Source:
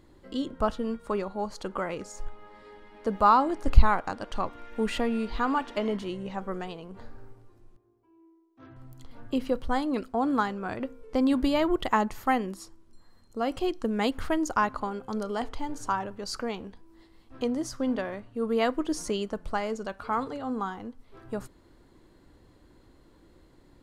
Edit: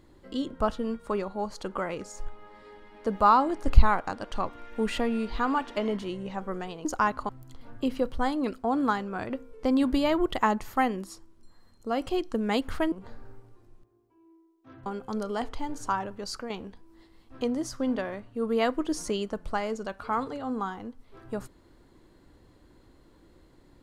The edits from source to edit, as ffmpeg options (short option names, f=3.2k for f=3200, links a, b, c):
-filter_complex "[0:a]asplit=6[a][b][c][d][e][f];[a]atrim=end=6.852[g];[b]atrim=start=14.418:end=14.862[h];[c]atrim=start=8.788:end=14.422[i];[d]atrim=start=6.848:end=8.792[j];[e]atrim=start=14.858:end=16.5,asetpts=PTS-STARTPTS,afade=t=out:st=1.392:d=0.25:silence=0.446684[k];[f]atrim=start=16.5,asetpts=PTS-STARTPTS,afade=t=in:d=0.004:c=hsin:silence=0.446684[l];[g][h]acrossfade=d=0.004:c1=hsin:c2=hsin[m];[m][i]acrossfade=d=0.004:c1=hsin:c2=hsin[n];[n][j]acrossfade=d=0.004:c1=hsin:c2=hsin[o];[k][l]concat=n=2:v=0:a=1[p];[o][p]acrossfade=d=0.004:c1=hsin:c2=hsin"